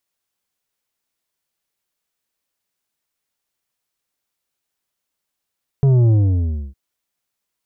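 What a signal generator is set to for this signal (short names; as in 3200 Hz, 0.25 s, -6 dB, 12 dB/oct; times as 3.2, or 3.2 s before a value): sub drop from 140 Hz, over 0.91 s, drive 8 dB, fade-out 0.64 s, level -11 dB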